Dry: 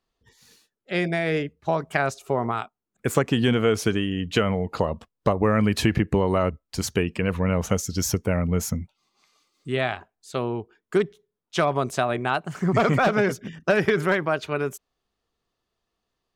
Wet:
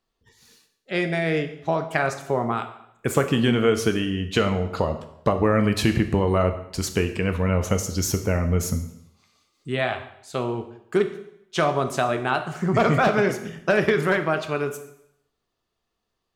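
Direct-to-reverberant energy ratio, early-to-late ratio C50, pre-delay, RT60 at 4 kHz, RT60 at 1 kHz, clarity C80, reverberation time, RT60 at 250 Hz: 7.0 dB, 11.0 dB, 7 ms, 0.70 s, 0.75 s, 13.5 dB, 0.75 s, 0.70 s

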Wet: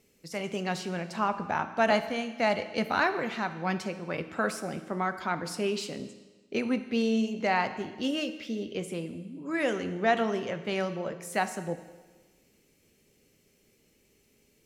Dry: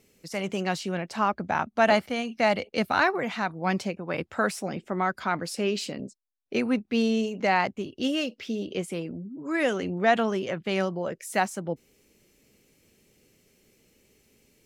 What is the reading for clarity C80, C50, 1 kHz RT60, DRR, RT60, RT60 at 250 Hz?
13.0 dB, 11.5 dB, 1.3 s, 9.5 dB, 1.3 s, 1.3 s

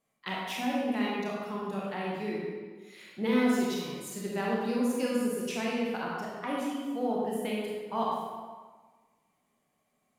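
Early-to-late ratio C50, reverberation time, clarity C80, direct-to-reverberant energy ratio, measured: −1.5 dB, 1.4 s, 1.0 dB, −4.5 dB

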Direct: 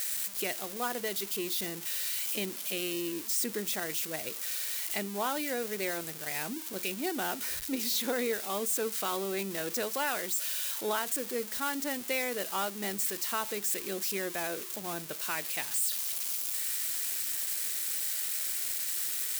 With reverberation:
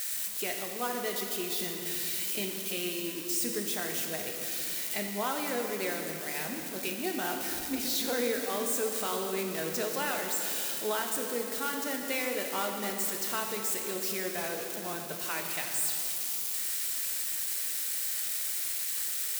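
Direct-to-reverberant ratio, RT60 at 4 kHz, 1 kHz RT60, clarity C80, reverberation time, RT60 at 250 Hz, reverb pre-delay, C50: 2.0 dB, 2.4 s, 2.7 s, 4.5 dB, 3.0 s, 3.7 s, 3 ms, 3.5 dB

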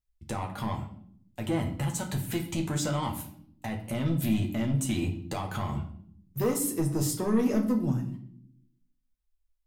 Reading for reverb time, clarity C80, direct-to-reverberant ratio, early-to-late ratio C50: 0.65 s, 14.0 dB, 1.0 dB, 10.5 dB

